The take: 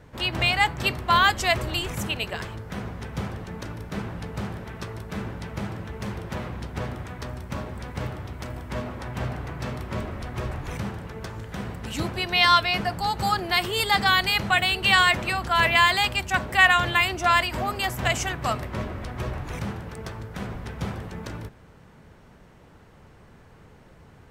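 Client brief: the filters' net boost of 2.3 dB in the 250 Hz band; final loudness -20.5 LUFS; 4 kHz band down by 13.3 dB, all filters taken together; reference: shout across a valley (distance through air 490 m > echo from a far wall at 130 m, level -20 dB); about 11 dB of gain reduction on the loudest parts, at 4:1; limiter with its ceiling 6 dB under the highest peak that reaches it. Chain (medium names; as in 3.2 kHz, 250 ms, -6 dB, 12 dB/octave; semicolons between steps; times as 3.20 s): peaking EQ 250 Hz +4 dB; peaking EQ 4 kHz -4.5 dB; compression 4:1, threshold -27 dBFS; peak limiter -20.5 dBFS; distance through air 490 m; echo from a far wall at 130 m, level -20 dB; trim +14 dB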